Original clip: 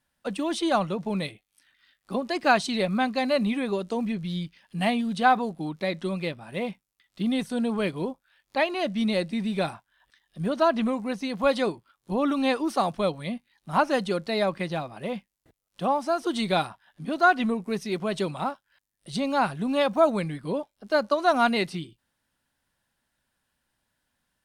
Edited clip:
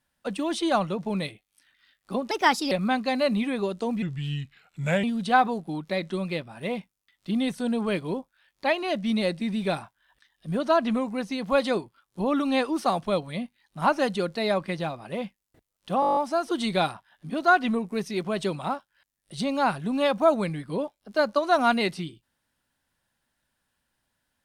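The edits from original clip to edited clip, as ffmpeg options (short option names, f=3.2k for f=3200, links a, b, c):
-filter_complex "[0:a]asplit=13[a][b][c][d][e][f][g][h][i][j][k][l][m];[a]atrim=end=2.314[n];[b]atrim=start=2.31:end=2.81,asetpts=PTS-STARTPTS,asetrate=54684,aresample=44100,atrim=end_sample=17782,asetpts=PTS-STARTPTS[o];[c]atrim=start=2.806:end=4.124[p];[d]atrim=start=4.12:end=4.95,asetpts=PTS-STARTPTS,asetrate=36162,aresample=44100[q];[e]atrim=start=4.946:end=15.942[r];[f]atrim=start=15.918:end=15.942[s];[g]atrim=start=15.918:end=15.942[t];[h]atrim=start=15.918:end=15.942[u];[i]atrim=start=15.918:end=15.942[v];[j]atrim=start=15.918:end=15.942[w];[k]atrim=start=15.918:end=15.942[x];[l]atrim=start=15.918:end=15.942[y];[m]atrim=start=15.918[z];[n][o]acrossfade=d=0.004:c1=hsin:c2=hsin[aa];[aa][p]acrossfade=d=0.004:c1=hsin:c2=hsin[ab];[ab][q]acrossfade=d=0.004:c1=hsin:c2=hsin[ac];[ac][r]acrossfade=d=0.004:c1=hsin:c2=hsin[ad];[ad][s]acrossfade=d=0.004:c1=hsin:c2=hsin[ae];[ae][t]acrossfade=d=0.004:c1=hsin:c2=hsin[af];[af][u]acrossfade=d=0.004:c1=hsin:c2=hsin[ag];[ag][v]acrossfade=d=0.004:c1=hsin:c2=hsin[ah];[ah][w]acrossfade=d=0.004:c1=hsin:c2=hsin[ai];[ai][x]acrossfade=d=0.004:c1=hsin:c2=hsin[aj];[aj][y]acrossfade=d=0.004:c1=hsin:c2=hsin[ak];[ak][z]acrossfade=d=0.004:c1=hsin:c2=hsin"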